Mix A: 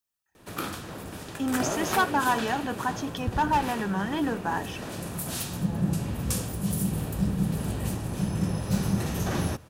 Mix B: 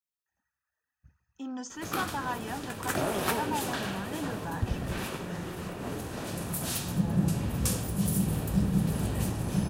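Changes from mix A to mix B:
speech -9.5 dB; background: entry +1.35 s

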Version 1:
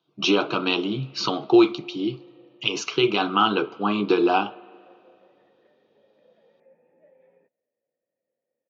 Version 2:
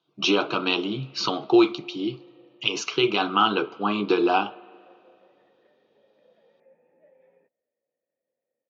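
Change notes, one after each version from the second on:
master: add bass shelf 350 Hz -3.5 dB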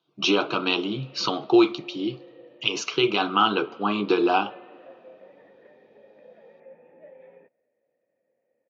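background +10.5 dB

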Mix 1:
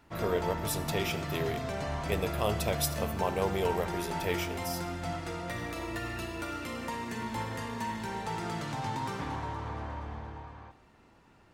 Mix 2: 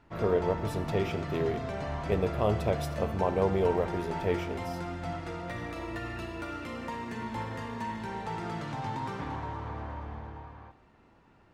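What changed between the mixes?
speech: add tilt shelf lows +5.5 dB, about 1.3 kHz; master: add low-pass 2.7 kHz 6 dB/octave

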